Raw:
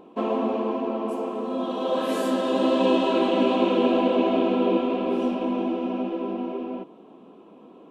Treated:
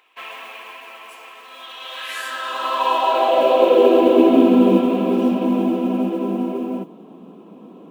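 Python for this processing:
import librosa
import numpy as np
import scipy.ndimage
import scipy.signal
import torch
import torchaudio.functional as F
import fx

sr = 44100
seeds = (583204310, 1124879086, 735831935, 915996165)

y = fx.mod_noise(x, sr, seeds[0], snr_db=34)
y = fx.filter_sweep_highpass(y, sr, from_hz=2000.0, to_hz=170.0, start_s=2.07, end_s=4.92, q=2.9)
y = y * librosa.db_to_amplitude(3.5)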